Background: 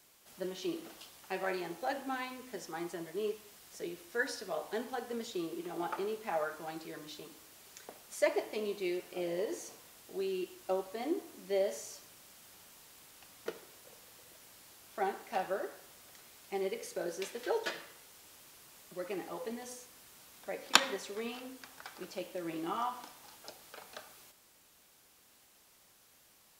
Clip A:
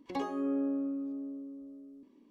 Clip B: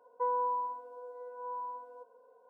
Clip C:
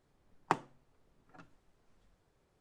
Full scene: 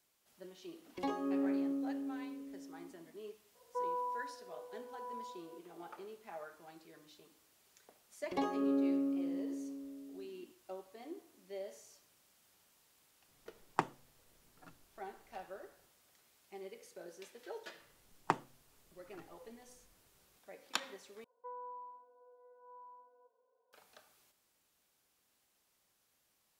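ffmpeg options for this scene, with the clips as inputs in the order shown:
-filter_complex "[1:a]asplit=2[a][b];[2:a]asplit=2[c][d];[3:a]asplit=2[e][f];[0:a]volume=-13dB[g];[c]lowshelf=f=260:g=11[h];[g]asplit=2[i][j];[i]atrim=end=21.244[k];[d]atrim=end=2.49,asetpts=PTS-STARTPTS,volume=-16dB[l];[j]atrim=start=23.726[m];[a]atrim=end=2.3,asetpts=PTS-STARTPTS,volume=-2.5dB,afade=t=in:d=0.004:c=hsin,afade=t=out:st=2.296:d=0.004:c=hsin,adelay=880[n];[h]atrim=end=2.49,asetpts=PTS-STARTPTS,volume=-7.5dB,afade=t=in:d=0.004:c=hsin,afade=t=out:st=2.486:d=0.004:c=hsin,adelay=3550[o];[b]atrim=end=2.3,asetpts=PTS-STARTPTS,volume=-0.5dB,afade=t=in:d=0.004:c=hsin,afade=t=out:st=2.296:d=0.004:c=hsin,adelay=8220[p];[e]atrim=end=2.6,asetpts=PTS-STARTPTS,volume=-2dB,afade=t=in:d=0.004:c=hsin,afade=t=out:st=2.596:d=0.004:c=hsin,adelay=13280[q];[f]atrim=end=2.6,asetpts=PTS-STARTPTS,volume=-1.5dB,afade=t=in:d=0.004:c=hsin,afade=t=out:st=2.596:d=0.004:c=hsin,adelay=17790[r];[k][l]acrossfade=d=0.004:c1=hsin:c2=hsin[s];[s][m]acrossfade=d=0.004:c1=hsin:c2=hsin[t];[t][n][o][p][q][r]amix=inputs=6:normalize=0"

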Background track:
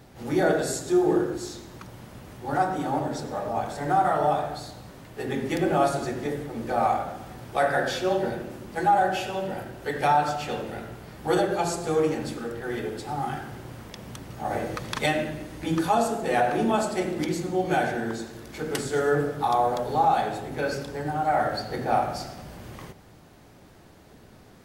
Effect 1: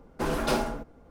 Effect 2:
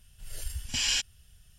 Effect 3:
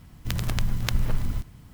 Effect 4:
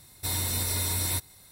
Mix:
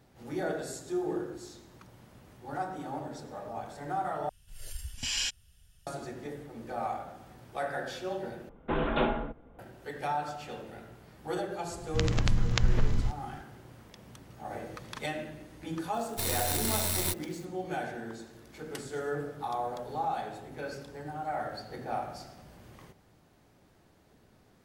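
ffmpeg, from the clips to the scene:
-filter_complex "[0:a]volume=-11dB[a];[1:a]aresample=8000,aresample=44100[b];[3:a]aresample=16000,aresample=44100[c];[4:a]acrusher=bits=5:dc=4:mix=0:aa=0.000001[d];[a]asplit=3[e][f][g];[e]atrim=end=4.294[h];[2:a]atrim=end=1.58,asetpts=PTS-STARTPTS,volume=-4dB[i];[f]atrim=start=5.866:end=8.494[j];[b]atrim=end=1.1,asetpts=PTS-STARTPTS,volume=-1dB[k];[g]atrim=start=9.586[l];[c]atrim=end=1.73,asetpts=PTS-STARTPTS,volume=-0.5dB,afade=t=in:d=0.004:c=hsin,afade=t=out:st=1.726:d=0.004:c=hsin,adelay=11690[m];[d]atrim=end=1.51,asetpts=PTS-STARTPTS,volume=-2.5dB,afade=t=in:d=0.004:c=hsin,afade=t=out:st=1.506:d=0.004:c=hsin,adelay=15940[n];[h][i]acrossfade=d=0.004:c1=hsin:c2=hsin[o];[o][j]acrossfade=d=0.004:c1=hsin:c2=hsin[p];[p][k]acrossfade=d=0.004:c1=hsin:c2=hsin[q];[q][l]acrossfade=d=0.004:c1=hsin:c2=hsin[r];[r][m][n]amix=inputs=3:normalize=0"

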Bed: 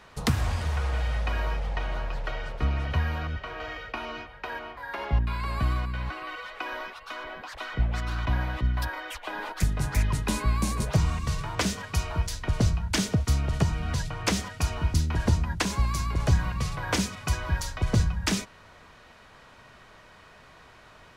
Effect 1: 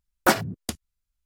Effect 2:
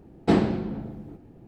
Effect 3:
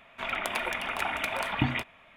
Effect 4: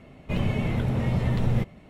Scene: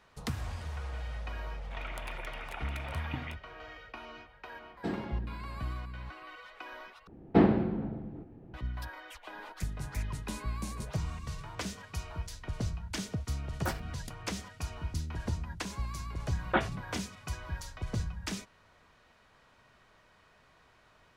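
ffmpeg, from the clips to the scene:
-filter_complex "[2:a]asplit=2[a][b];[1:a]asplit=2[c][d];[0:a]volume=-11dB[e];[b]lowpass=2.4k[f];[d]aresample=8000,aresample=44100[g];[e]asplit=2[h][i];[h]atrim=end=7.074[j];[f]atrim=end=1.47,asetpts=PTS-STARTPTS,volume=-2dB[k];[i]atrim=start=8.536[l];[3:a]atrim=end=2.16,asetpts=PTS-STARTPTS,volume=-12.5dB,afade=t=in:d=0.004:c=hsin,afade=t=out:st=2.156:d=0.004:c=hsin,adelay=1520[m];[a]atrim=end=1.47,asetpts=PTS-STARTPTS,volume=-15.5dB,afade=t=in:d=0.004:c=hsin,afade=t=out:st=1.466:d=0.004:c=hsin,adelay=4560[n];[c]atrim=end=1.25,asetpts=PTS-STARTPTS,volume=-16.5dB,afade=t=in:d=0.004:c=hsin,afade=t=out:st=1.246:d=0.004:c=hsin,adelay=13390[o];[g]atrim=end=1.25,asetpts=PTS-STARTPTS,volume=-8.5dB,afade=t=in:d=0.004:c=hsin,afade=t=out:st=1.246:d=0.004:c=hsin,adelay=16270[p];[j][k]acrossfade=d=0.004:c1=hsin:c2=hsin[q];[q][l]acrossfade=d=0.004:c1=hsin:c2=hsin[r];[r][m][n][o][p]amix=inputs=5:normalize=0"

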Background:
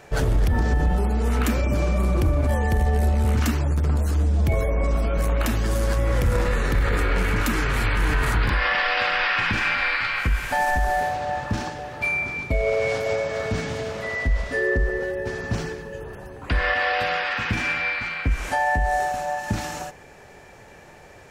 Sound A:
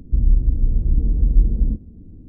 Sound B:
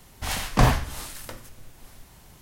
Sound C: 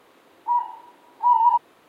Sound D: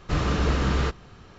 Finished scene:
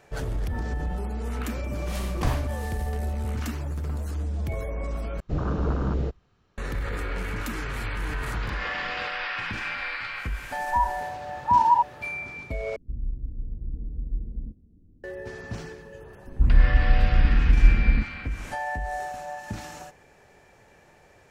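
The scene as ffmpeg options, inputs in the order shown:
-filter_complex "[4:a]asplit=2[a][b];[1:a]asplit=2[c][d];[0:a]volume=-9dB[e];[2:a]acompressor=mode=upward:threshold=-38dB:ratio=2.5:attack=3.2:release=140:knee=2.83:detection=peak[f];[a]afwtdn=0.0562[g];[b]highpass=f=300:p=1[h];[e]asplit=3[i][j][k];[i]atrim=end=5.204[l];[g]atrim=end=1.38,asetpts=PTS-STARTPTS,volume=-2dB[m];[j]atrim=start=6.576:end=12.764[n];[c]atrim=end=2.28,asetpts=PTS-STARTPTS,volume=-15.5dB[o];[k]atrim=start=15.036[p];[f]atrim=end=2.41,asetpts=PTS-STARTPTS,volume=-10dB,afade=t=in:d=0.004:c=hsin,afade=t=out:st=2.406:d=0.004:c=hsin,adelay=1640[q];[h]atrim=end=1.38,asetpts=PTS-STARTPTS,volume=-15dB,afade=t=in:d=0.004:c=hsin,afade=t=out:st=1.376:d=0.004:c=hsin,adelay=360738S[r];[3:a]atrim=end=1.88,asetpts=PTS-STARTPTS,volume=-1.5dB,afade=t=in:d=0.004:c=hsin,afade=t=out:st=1.876:d=0.004:c=hsin,adelay=10250[s];[d]atrim=end=2.28,asetpts=PTS-STARTPTS,volume=-1.5dB,afade=t=in:d=0.004:c=hsin,afade=t=out:st=2.276:d=0.004:c=hsin,adelay=16270[t];[l][m]acrossfade=d=0.004:c1=hsin:c2=hsin[u];[u][n]acrossfade=d=0.004:c1=hsin:c2=hsin[v];[v][o]acrossfade=d=0.004:c1=hsin:c2=hsin[w];[w][p]acrossfade=d=0.004:c1=hsin:c2=hsin[x];[x][q][r][s][t]amix=inputs=5:normalize=0"

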